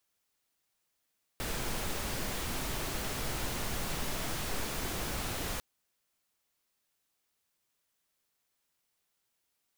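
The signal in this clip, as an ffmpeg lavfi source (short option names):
-f lavfi -i "anoisesrc=c=pink:a=0.0912:d=4.2:r=44100:seed=1"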